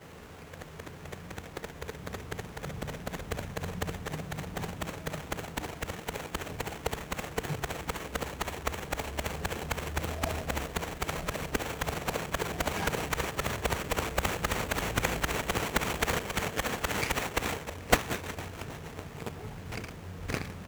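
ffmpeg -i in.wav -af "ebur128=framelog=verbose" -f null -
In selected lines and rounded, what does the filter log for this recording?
Integrated loudness:
  I:         -34.0 LUFS
  Threshold: -44.2 LUFS
Loudness range:
  LRA:         7.5 LU
  Threshold: -53.7 LUFS
  LRA low:   -38.2 LUFS
  LRA high:  -30.8 LUFS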